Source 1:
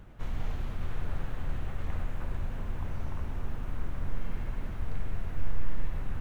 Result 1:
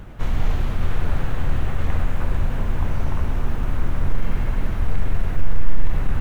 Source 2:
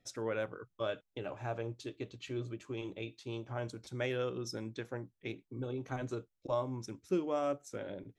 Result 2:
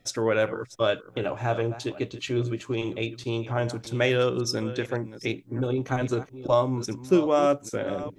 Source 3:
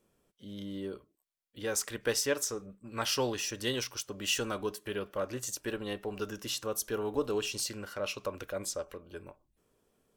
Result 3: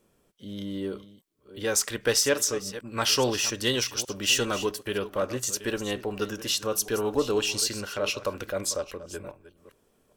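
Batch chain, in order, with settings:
chunks repeated in reverse 405 ms, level -14 dB; dynamic bell 4.6 kHz, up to +3 dB, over -48 dBFS, Q 0.75; in parallel at -6 dB: overload inside the chain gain 22.5 dB; on the sum: normalise loudness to -27 LUFS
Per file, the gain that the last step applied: +8.5 dB, +8.5 dB, +2.5 dB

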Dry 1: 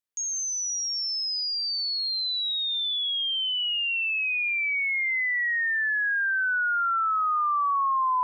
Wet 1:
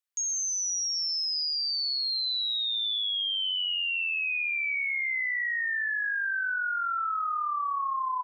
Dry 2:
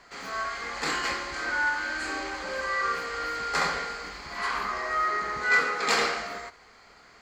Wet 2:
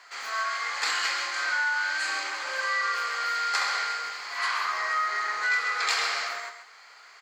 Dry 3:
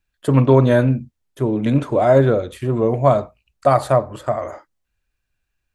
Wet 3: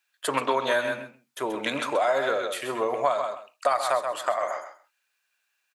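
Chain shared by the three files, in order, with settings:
high-pass 960 Hz 12 dB/octave; feedback delay 131 ms, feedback 15%, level -9 dB; dynamic bell 4.3 kHz, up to +3 dB, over -38 dBFS, Q 0.87; compression 4:1, threshold -28 dBFS; normalise loudness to -27 LUFS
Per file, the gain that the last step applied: 0.0 dB, +4.0 dB, +6.5 dB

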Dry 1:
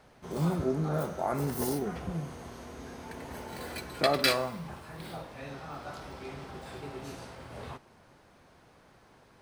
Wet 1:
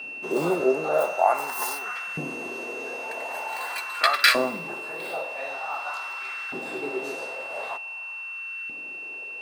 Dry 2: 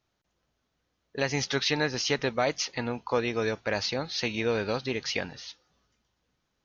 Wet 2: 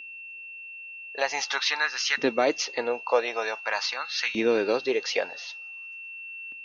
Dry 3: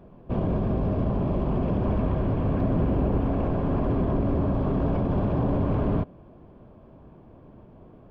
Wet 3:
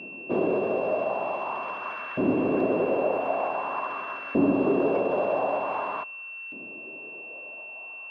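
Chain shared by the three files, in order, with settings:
whistle 2.7 kHz -40 dBFS; LFO high-pass saw up 0.46 Hz 260–1600 Hz; normalise loudness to -27 LUFS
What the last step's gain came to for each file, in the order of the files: +6.0 dB, +1.0 dB, +1.5 dB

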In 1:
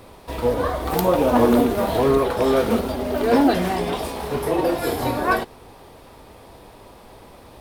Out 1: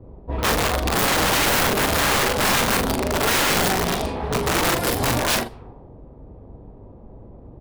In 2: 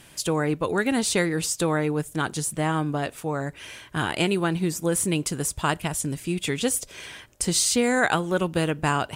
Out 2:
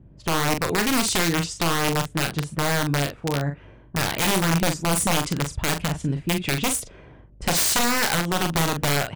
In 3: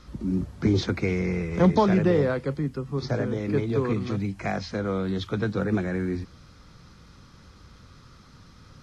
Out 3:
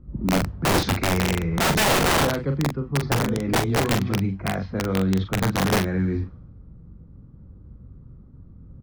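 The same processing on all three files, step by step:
level-controlled noise filter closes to 380 Hz, open at -19 dBFS; tone controls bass +6 dB, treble +2 dB; integer overflow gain 15 dB; hum 50 Hz, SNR 30 dB; doubling 42 ms -7 dB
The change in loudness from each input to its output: +1.0 LU, +2.0 LU, +3.5 LU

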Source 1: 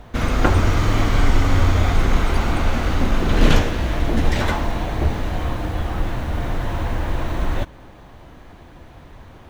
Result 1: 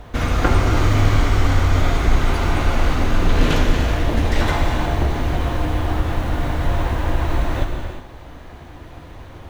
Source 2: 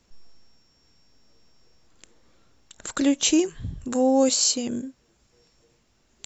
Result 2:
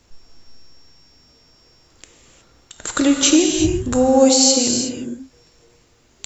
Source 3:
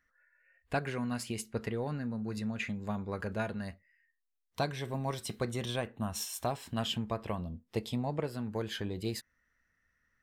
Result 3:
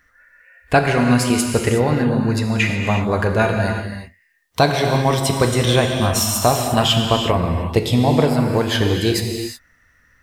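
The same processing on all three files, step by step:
compression 1.5:1, threshold -22 dBFS; peaking EQ 210 Hz -5.5 dB 0.28 oct; gated-style reverb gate 390 ms flat, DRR 2.5 dB; peak normalisation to -1.5 dBFS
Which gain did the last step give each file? +2.5 dB, +7.5 dB, +17.5 dB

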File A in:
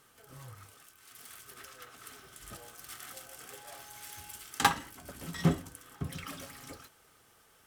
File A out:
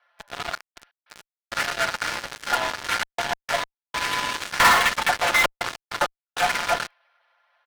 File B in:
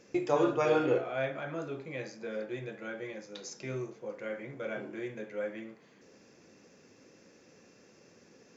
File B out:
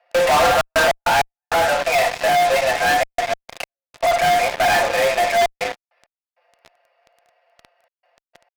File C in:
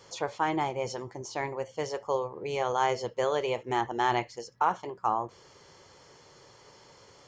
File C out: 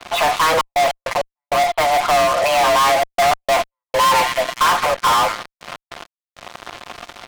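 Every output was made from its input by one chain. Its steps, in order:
single-diode clipper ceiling -23.5 dBFS; comb 5.7 ms, depth 70%; on a send: feedback echo behind a high-pass 209 ms, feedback 57%, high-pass 2.6 kHz, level -9.5 dB; on the sum: mistuned SSB +170 Hz 460–3400 Hz; careless resampling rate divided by 6×, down none, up hold; distance through air 360 m; trance gate "xxxx.x.x..xxxxxx" 99 bpm -60 dB; treble shelf 2.5 kHz +3.5 dB; in parallel at -3 dB: fuzz box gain 51 dB, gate -54 dBFS; on the sum: trim +1.5 dB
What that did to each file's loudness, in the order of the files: +13.5 LU, +16.5 LU, +14.5 LU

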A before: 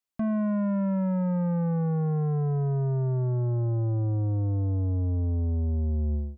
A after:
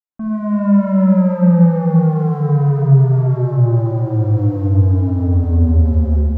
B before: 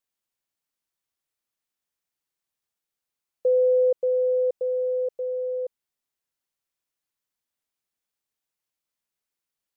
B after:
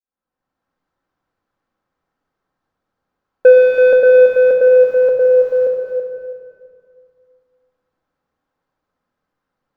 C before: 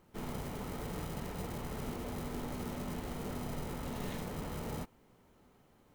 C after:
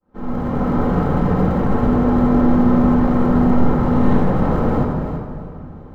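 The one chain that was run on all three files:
fade-in on the opening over 0.65 s; modulation noise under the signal 26 dB; high-order bell 4.5 kHz -14 dB 2.6 oct; hum notches 50/100/150 Hz; saturation -22.5 dBFS; distance through air 140 m; thinning echo 330 ms, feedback 24%, high-pass 220 Hz, level -8 dB; simulated room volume 2900 m³, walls mixed, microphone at 2.1 m; peak normalisation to -1.5 dBFS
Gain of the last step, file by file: +10.0 dB, +16.5 dB, +20.0 dB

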